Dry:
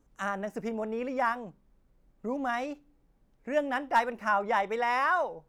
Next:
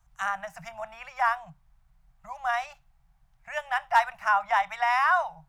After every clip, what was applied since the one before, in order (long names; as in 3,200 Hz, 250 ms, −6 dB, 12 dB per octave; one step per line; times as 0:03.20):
Chebyshev band-stop filter 160–690 Hz, order 4
level +4.5 dB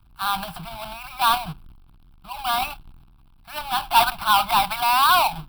each half-wave held at its own peak
transient designer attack −3 dB, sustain +9 dB
phaser with its sweep stopped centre 1,900 Hz, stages 6
level +4.5 dB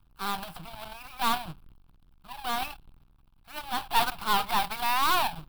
gain on one half-wave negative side −12 dB
level −4.5 dB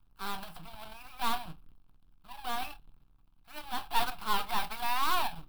convolution reverb, pre-delay 3 ms, DRR 9.5 dB
level −6 dB